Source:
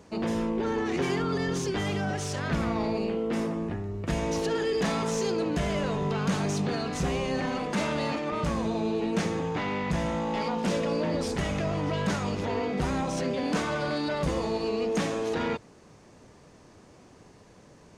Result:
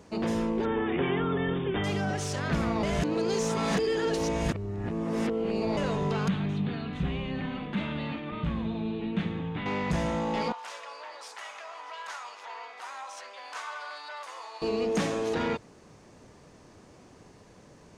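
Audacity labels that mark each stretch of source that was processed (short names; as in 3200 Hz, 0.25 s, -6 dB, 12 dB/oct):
0.650000	1.840000	brick-wall FIR low-pass 3700 Hz
2.830000	5.770000	reverse
6.280000	9.660000	EQ curve 200 Hz 0 dB, 520 Hz -11 dB, 3600 Hz -2 dB, 5300 Hz -26 dB
10.520000	14.620000	ladder high-pass 790 Hz, resonance 35%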